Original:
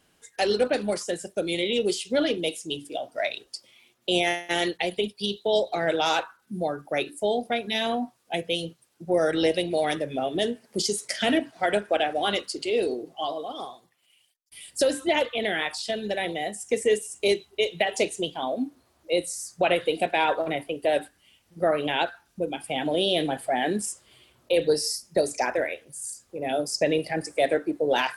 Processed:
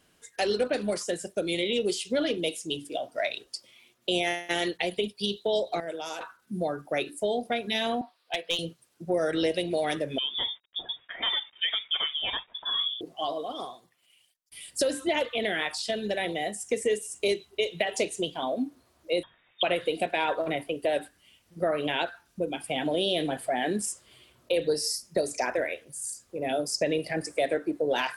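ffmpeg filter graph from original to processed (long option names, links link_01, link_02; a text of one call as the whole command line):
ffmpeg -i in.wav -filter_complex "[0:a]asettb=1/sr,asplit=3[link_01][link_02][link_03];[link_01]atrim=end=5.804[link_04];[link_02]atrim=start=5.8:end=6.21,asetpts=PTS-STARTPTS,afade=type=in:duration=0.004:curve=qsin,afade=type=out:start_time=0.406:duration=0.004:curve=qsin,highpass=frequency=740:poles=1,equalizer=frequency=2000:width=0.36:gain=-14,bandreject=frequency=3900:width=5.3[link_05];[link_03]atrim=start=6.206[link_06];[link_04][link_05]acrossfade=duration=0.004:curve1=hsin:curve2=qsin[link_07];[link_07][link_06]acrossfade=duration=0.004:curve1=qsin:curve2=hsin,asettb=1/sr,asplit=3[link_08][link_09][link_10];[link_08]atrim=end=8.014[link_11];[link_09]atrim=start=8.01:end=8.59,asetpts=PTS-STARTPTS,afade=type=in:duration=0.004:curve=qsin,afade=type=out:start_time=0.576:duration=0.004:curve=qsin,highpass=620,highshelf=frequency=5300:width_type=q:width=3:gain=-8,aeval=exprs='clip(val(0),-1,0.075)':channel_layout=same[link_12];[link_10]atrim=start=8.586[link_13];[link_11][link_12]acrossfade=duration=0.004:curve1=hsin:curve2=qsin[link_14];[link_14][link_13]acrossfade=duration=0.004:curve1=qsin:curve2=hsin,asettb=1/sr,asplit=3[link_15][link_16][link_17];[link_15]atrim=end=10.184[link_18];[link_16]atrim=start=10.18:end=13.01,asetpts=PTS-STARTPTS,afade=type=in:duration=0.004:curve=qsin,afade=type=out:start_time=2.826:duration=0.004:curve=qsin,flanger=delay=1.3:depth=1.7:regen=54:speed=1.4:shape=triangular,aeval=exprs='val(0)*gte(abs(val(0)),0.00178)':channel_layout=same,lowpass=frequency=3200:width_type=q:width=0.5098,lowpass=frequency=3200:width_type=q:width=0.6013,lowpass=frequency=3200:width_type=q:width=0.9,lowpass=frequency=3200:width_type=q:width=2.563,afreqshift=-3800[link_19];[link_17]atrim=start=13.006[link_20];[link_18][link_19]acrossfade=duration=0.004:curve1=hsin:curve2=qsin[link_21];[link_21][link_20]acrossfade=duration=0.004:curve1=qsin:curve2=hsin,asettb=1/sr,asplit=3[link_22][link_23][link_24];[link_22]atrim=end=19.234[link_25];[link_23]atrim=start=19.23:end=19.63,asetpts=PTS-STARTPTS,afade=type=in:duration=0.004:curve=qsin,afade=type=out:start_time=0.396:duration=0.004:curve=qsin,tiltshelf=frequency=870:gain=-6,lowpass=frequency=3200:width_type=q:width=0.5098,lowpass=frequency=3200:width_type=q:width=0.6013,lowpass=frequency=3200:width_type=q:width=0.9,lowpass=frequency=3200:width_type=q:width=2.563,afreqshift=-3800[link_26];[link_24]atrim=start=19.626[link_27];[link_25][link_26]acrossfade=duration=0.004:curve1=hsin:curve2=qsin[link_28];[link_28][link_27]acrossfade=duration=0.004:curve1=qsin:curve2=hsin,acompressor=threshold=-25dB:ratio=2,bandreject=frequency=820:width=14" out.wav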